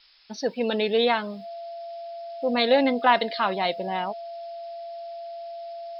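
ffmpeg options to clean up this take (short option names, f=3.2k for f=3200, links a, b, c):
-af "bandreject=f=680:w=30,afftdn=nr=30:nf=-37"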